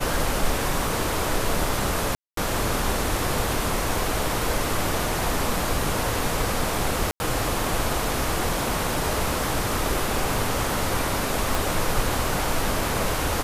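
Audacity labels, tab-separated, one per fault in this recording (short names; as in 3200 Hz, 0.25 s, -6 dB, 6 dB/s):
2.150000	2.370000	gap 0.223 s
7.110000	7.200000	gap 90 ms
11.550000	11.550000	pop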